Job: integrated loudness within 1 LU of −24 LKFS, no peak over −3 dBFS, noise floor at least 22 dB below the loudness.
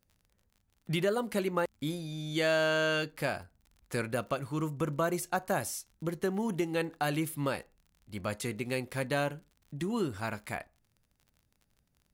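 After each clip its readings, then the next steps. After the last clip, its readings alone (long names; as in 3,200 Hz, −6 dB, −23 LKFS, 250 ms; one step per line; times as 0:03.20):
crackle rate 40 per second; integrated loudness −33.0 LKFS; sample peak −18.5 dBFS; target loudness −24.0 LKFS
→ click removal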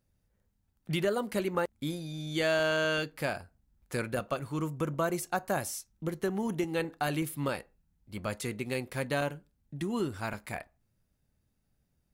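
crackle rate 0.41 per second; integrated loudness −33.0 LKFS; sample peak −18.5 dBFS; target loudness −24.0 LKFS
→ level +9 dB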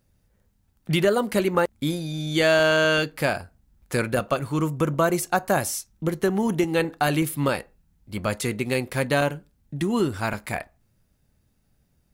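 integrated loudness −24.0 LKFS; sample peak −9.5 dBFS; background noise floor −67 dBFS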